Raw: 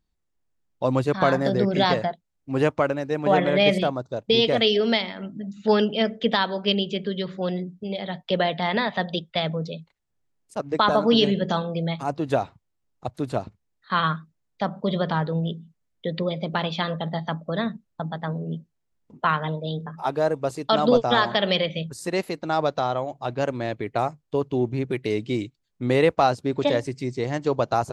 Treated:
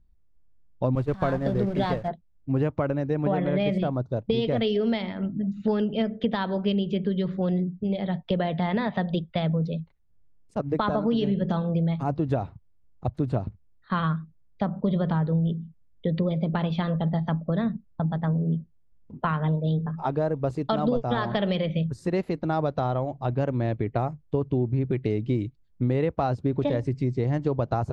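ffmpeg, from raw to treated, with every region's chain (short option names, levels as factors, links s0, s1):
-filter_complex "[0:a]asettb=1/sr,asplit=3[s0][s1][s2];[s0]atrim=end=0.954[s3];[s1]atrim=start=0.95:end=2.08,asetpts=PTS-STARTPTS,afade=t=in:d=0.004:c=qsin,afade=t=out:st=1.126:d=0.004:c=qsin,aeval=exprs='val(0)+0.5*0.0422*sgn(val(0))':c=same,agate=range=0.0224:threshold=0.141:ratio=3:release=100:detection=peak,equalizer=f=170:t=o:w=1.4:g=-3.5[s4];[s2]atrim=start=2.076[s5];[s3][s4]acrossfade=d=0.004:c1=hsin:c2=qsin[s6];[s6][s5]acrossfade=d=0.004:c1=qsin:c2=hsin,aemphasis=mode=reproduction:type=riaa,acompressor=threshold=0.112:ratio=6,volume=0.794"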